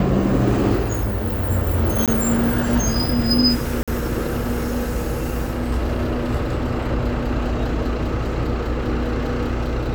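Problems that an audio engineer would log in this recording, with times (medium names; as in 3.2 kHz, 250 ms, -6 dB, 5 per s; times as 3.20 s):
2.06–2.08 s: dropout 17 ms
3.83–3.88 s: dropout 46 ms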